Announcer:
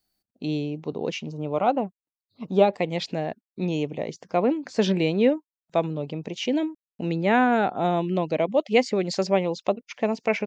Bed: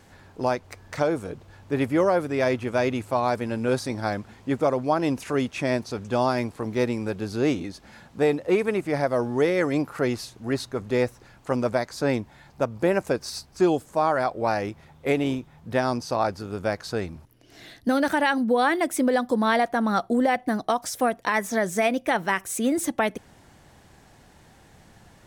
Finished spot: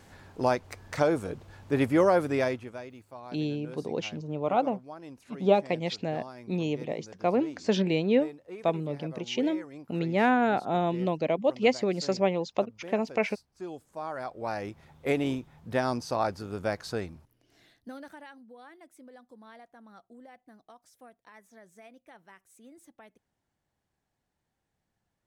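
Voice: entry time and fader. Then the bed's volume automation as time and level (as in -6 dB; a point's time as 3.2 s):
2.90 s, -3.5 dB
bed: 2.35 s -1 dB
2.88 s -21 dB
13.49 s -21 dB
14.92 s -4 dB
16.93 s -4 dB
18.47 s -29.5 dB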